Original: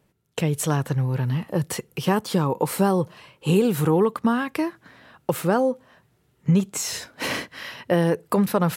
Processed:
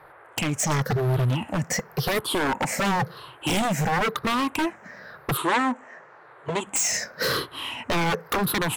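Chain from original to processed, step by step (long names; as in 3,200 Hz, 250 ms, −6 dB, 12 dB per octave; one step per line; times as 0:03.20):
rippled gain that drifts along the octave scale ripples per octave 0.61, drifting −0.95 Hz, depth 19 dB
wave folding −18 dBFS
0:05.37–0:06.67: loudspeaker in its box 180–8,500 Hz, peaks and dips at 190 Hz −10 dB, 1,000 Hz +7 dB, 1,900 Hz +5 dB, 5,100 Hz −8 dB, 7,500 Hz +4 dB
noise in a band 370–1,700 Hz −50 dBFS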